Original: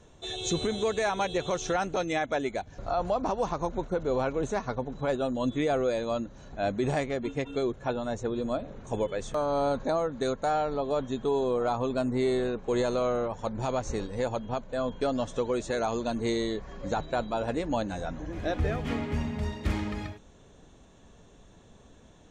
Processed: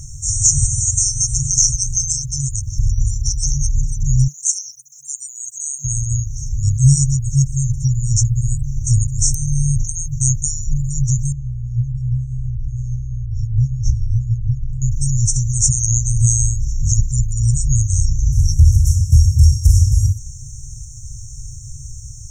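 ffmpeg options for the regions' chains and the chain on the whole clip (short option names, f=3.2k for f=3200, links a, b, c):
-filter_complex "[0:a]asettb=1/sr,asplit=3[a][b][c];[a]atrim=end=4.284[d];[b]atrim=start=4.28:end=5.85,asetpts=PTS-STARTPTS,afade=t=in:d=0.004:c=qsin,afade=t=out:st=1.566:d=0.004:c=qsin,highpass=390,aderivative[e];[c]atrim=start=5.846[f];[d][e]acrossfade=d=0.004:c1=hsin:c2=qsin[g];[g][f]acrossfade=d=0.004:c1=qsin:c2=hsin,asettb=1/sr,asplit=3[h][i][j];[h]atrim=end=11.324[k];[i]atrim=start=11.32:end=14.82,asetpts=PTS-STARTPTS,afade=t=in:d=0.004:c=qsin,afade=t=out:st=3.496:d=0.004:c=qsin,lowpass=f=3.6k:w=0.5412,lowpass=f=3.6k:w=1.3066,acompressor=threshold=-33dB:ratio=10:attack=3.2:release=140:knee=1:detection=peak,aeval=exprs='val(0)+0.002*(sin(2*PI*60*n/s)+sin(2*PI*2*60*n/s)/2+sin(2*PI*3*60*n/s)/3+sin(2*PI*4*60*n/s)/4+sin(2*PI*5*60*n/s)/5)':c=same[l];[j]atrim=start=14.816[m];[k][l]acrossfade=d=0.004:c1=hsin:c2=qsin[n];[n][m]acrossfade=d=0.004:c1=qsin:c2=hsin,lowshelf=f=270:g=-5.5,afftfilt=real='re*(1-between(b*sr/4096,150,5400))':imag='im*(1-between(b*sr/4096,150,5400))':win_size=4096:overlap=0.75,alimiter=level_in=32dB:limit=-1dB:release=50:level=0:latency=1,volume=-1dB"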